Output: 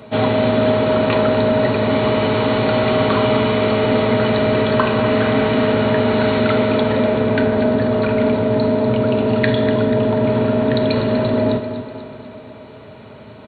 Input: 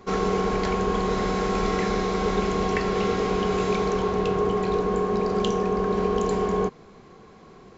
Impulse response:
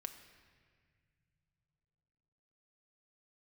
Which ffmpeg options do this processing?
-filter_complex "[0:a]highpass=180,aecho=1:1:1.2:0.3,asplit=2[link_01][link_02];[link_02]alimiter=limit=-21dB:level=0:latency=1,volume=-3dB[link_03];[link_01][link_03]amix=inputs=2:normalize=0,aecho=1:1:141|282|423|564|705|846:0.282|0.152|0.0822|0.0444|0.024|0.0129,asplit=2[link_04][link_05];[1:a]atrim=start_sample=2205,lowshelf=frequency=420:gain=-11[link_06];[link_05][link_06]afir=irnorm=-1:irlink=0,volume=8.5dB[link_07];[link_04][link_07]amix=inputs=2:normalize=0,asetrate=25442,aresample=44100"

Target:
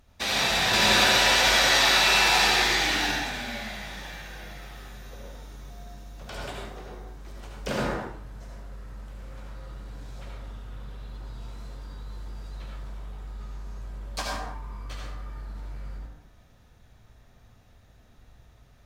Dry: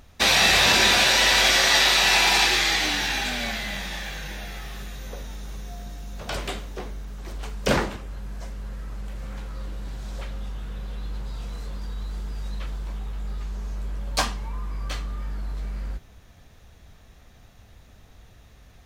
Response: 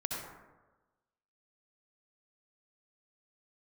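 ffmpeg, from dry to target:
-filter_complex "[0:a]asettb=1/sr,asplit=3[link_01][link_02][link_03];[link_01]atrim=end=0.734[link_04];[link_02]atrim=start=0.73:end=3.11,asetpts=PTS-STARTPTS,afade=type=in:duration=0.004:curve=qsin,afade=type=out:start_time=2.376:duration=0.004:curve=qsin,acontrast=29[link_05];[link_03]atrim=start=3.106[link_06];[link_04][link_05]acrossfade=duration=0.004:curve1=hsin:curve2=qsin[link_07];[link_07][link_06]acrossfade=duration=0.004:curve1=qsin:curve2=hsin[link_08];[1:a]atrim=start_sample=2205,afade=type=out:start_time=0.35:duration=0.01,atrim=end_sample=15876,asetrate=40131,aresample=44100[link_09];[link_08][link_09]afir=irnorm=-1:irlink=0,volume=-9dB"

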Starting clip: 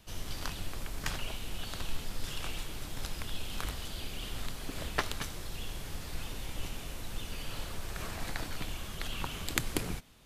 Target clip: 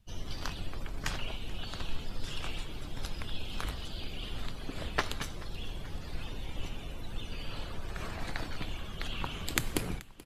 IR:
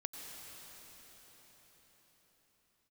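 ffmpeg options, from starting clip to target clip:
-af "afftdn=noise_reduction=17:noise_floor=-49,aecho=1:1:432|864|1296|1728|2160:0.0944|0.0557|0.0329|0.0194|0.0114,volume=1dB"

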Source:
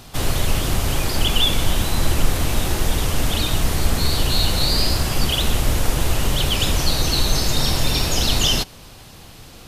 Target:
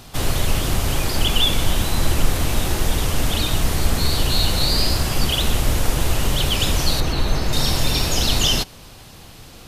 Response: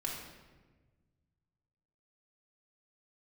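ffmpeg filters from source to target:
-filter_complex "[0:a]asettb=1/sr,asplit=3[link_01][link_02][link_03];[link_01]atrim=end=7.004[link_04];[link_02]atrim=start=7:end=7.53,asetpts=PTS-STARTPTS,afade=type=in:duration=0.004:curve=qsin,afade=type=out:start_time=0.526:duration=0.004:curve=qsin,acrossover=split=2900[link_05][link_06];[link_06]acompressor=threshold=-35dB:ratio=4:attack=1:release=60[link_07];[link_05][link_07]amix=inputs=2:normalize=0[link_08];[link_03]atrim=start=7.526[link_09];[link_04][link_08]acrossfade=duration=0.004:curve1=hsin:curve2=qsin[link_10];[link_10][link_09]acrossfade=duration=0.004:curve1=qsin:curve2=hsin"

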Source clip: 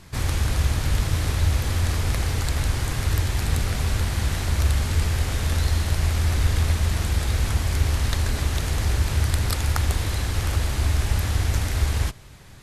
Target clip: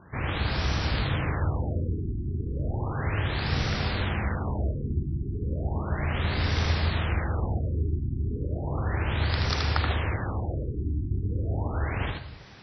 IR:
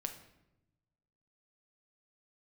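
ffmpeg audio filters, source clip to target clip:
-filter_complex "[0:a]highpass=frequency=160:poles=1,asplit=2[link_01][link_02];[1:a]atrim=start_sample=2205,afade=type=out:start_time=0.32:duration=0.01,atrim=end_sample=14553,adelay=78[link_03];[link_02][link_03]afir=irnorm=-1:irlink=0,volume=-2.5dB[link_04];[link_01][link_04]amix=inputs=2:normalize=0,afftfilt=real='re*lt(b*sr/1024,380*pow(6000/380,0.5+0.5*sin(2*PI*0.34*pts/sr)))':imag='im*lt(b*sr/1024,380*pow(6000/380,0.5+0.5*sin(2*PI*0.34*pts/sr)))':win_size=1024:overlap=0.75"

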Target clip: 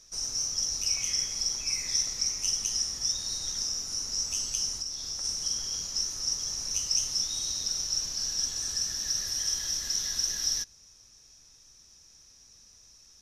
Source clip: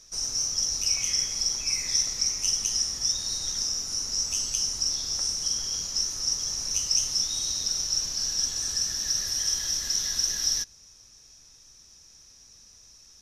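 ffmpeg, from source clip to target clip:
ffmpeg -i in.wav -filter_complex "[0:a]asplit=3[link_01][link_02][link_03];[link_01]afade=type=out:start_time=4.77:duration=0.02[link_04];[link_02]acompressor=threshold=-29dB:ratio=6,afade=type=in:start_time=4.77:duration=0.02,afade=type=out:start_time=5.23:duration=0.02[link_05];[link_03]afade=type=in:start_time=5.23:duration=0.02[link_06];[link_04][link_05][link_06]amix=inputs=3:normalize=0,volume=-3dB" out.wav

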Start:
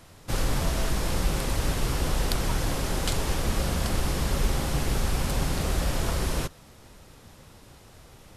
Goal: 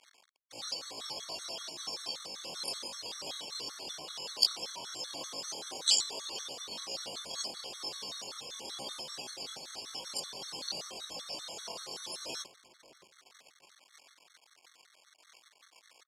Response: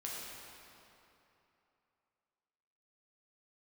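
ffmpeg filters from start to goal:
-filter_complex "[0:a]afftdn=noise_reduction=22:noise_floor=-33,areverse,acompressor=threshold=-33dB:ratio=20,areverse,aexciter=amount=15.1:drive=8.4:freq=3300,atempo=0.52,asplit=2[link_01][link_02];[link_02]asoftclip=type=hard:threshold=-20dB,volume=-7dB[link_03];[link_01][link_03]amix=inputs=2:normalize=0,acrusher=bits=6:mix=0:aa=0.000001,highpass=500,lowpass=5300,asplit=2[link_04][link_05];[link_05]adelay=614,lowpass=frequency=1000:poles=1,volume=-14.5dB,asplit=2[link_06][link_07];[link_07]adelay=614,lowpass=frequency=1000:poles=1,volume=0.32,asplit=2[link_08][link_09];[link_09]adelay=614,lowpass=frequency=1000:poles=1,volume=0.32[link_10];[link_04][link_06][link_08][link_10]amix=inputs=4:normalize=0,afftfilt=real='re*gt(sin(2*PI*5.2*pts/sr)*(1-2*mod(floor(b*sr/1024/1100),2)),0)':imag='im*gt(sin(2*PI*5.2*pts/sr)*(1-2*mod(floor(b*sr/1024/1100),2)),0)':win_size=1024:overlap=0.75"

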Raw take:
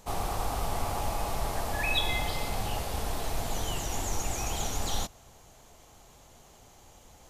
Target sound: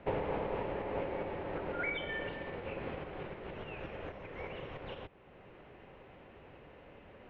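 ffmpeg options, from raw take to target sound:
ffmpeg -i in.wav -filter_complex "[0:a]asubboost=boost=4.5:cutoff=130,asettb=1/sr,asplit=3[link_01][link_02][link_03];[link_01]atrim=end=2.334[link_04];[link_02]atrim=start=2.33:end=4.42,asetpts=PTS-STARTPTS,afade=type=in:duration=0.004:curve=qsin,afade=type=out:start_time=2.086:duration=0.004:curve=qsin,acompressor=threshold=-22dB:ratio=6[link_05];[link_03]atrim=start=4.416[link_06];[link_04][link_05]acrossfade=duration=0.004:curve1=hsin:curve2=qsin[link_07];[link_07][link_06]acrossfade=duration=0.004:curve1=qsin:curve2=hsin,alimiter=limit=-23.5dB:level=0:latency=1:release=475,highpass=frequency=200:width_type=q:width=0.5412,highpass=frequency=200:width_type=q:width=1.307,lowpass=frequency=2900:width_type=q:width=0.5176,lowpass=frequency=2900:width_type=q:width=0.7071,lowpass=frequency=2900:width_type=q:width=1.932,afreqshift=-290,volume=5dB" out.wav

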